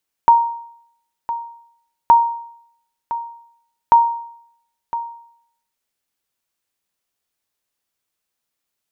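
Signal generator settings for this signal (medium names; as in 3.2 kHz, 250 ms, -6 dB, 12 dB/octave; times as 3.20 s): sonar ping 933 Hz, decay 0.69 s, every 1.82 s, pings 3, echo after 1.01 s, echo -13.5 dB -3.5 dBFS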